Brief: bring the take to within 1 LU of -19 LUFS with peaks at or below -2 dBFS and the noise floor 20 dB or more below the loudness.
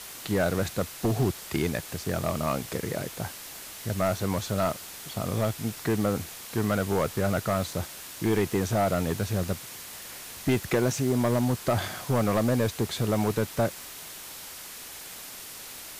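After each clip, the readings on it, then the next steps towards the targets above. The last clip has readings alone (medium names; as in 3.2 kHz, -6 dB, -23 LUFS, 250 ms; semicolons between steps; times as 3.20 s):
clipped samples 1.3%; clipping level -18.0 dBFS; noise floor -42 dBFS; noise floor target -49 dBFS; loudness -28.5 LUFS; peak level -18.0 dBFS; loudness target -19.0 LUFS
-> clip repair -18 dBFS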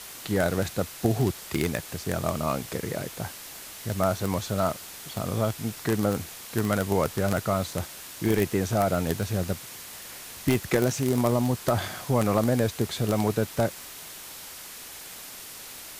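clipped samples 0.0%; noise floor -42 dBFS; noise floor target -48 dBFS
-> noise reduction 6 dB, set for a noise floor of -42 dBFS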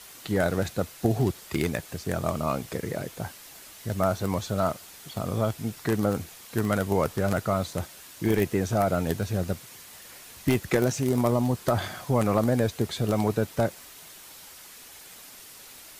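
noise floor -47 dBFS; noise floor target -48 dBFS
-> noise reduction 6 dB, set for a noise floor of -47 dBFS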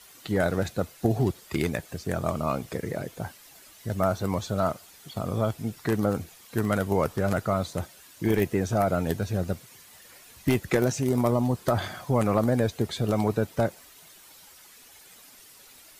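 noise floor -52 dBFS; loudness -27.5 LUFS; peak level -9.0 dBFS; loudness target -19.0 LUFS
-> trim +8.5 dB; peak limiter -2 dBFS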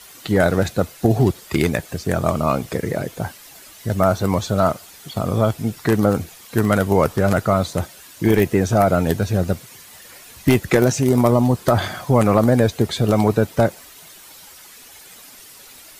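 loudness -19.0 LUFS; peak level -2.0 dBFS; noise floor -43 dBFS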